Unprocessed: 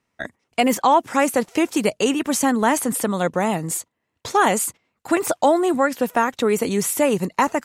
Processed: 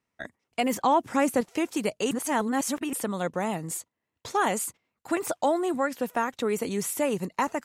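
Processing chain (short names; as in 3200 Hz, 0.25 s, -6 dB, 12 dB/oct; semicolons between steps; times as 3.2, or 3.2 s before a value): 0.74–1.41 low shelf 330 Hz +9 dB; 2.11–2.93 reverse; gain -8 dB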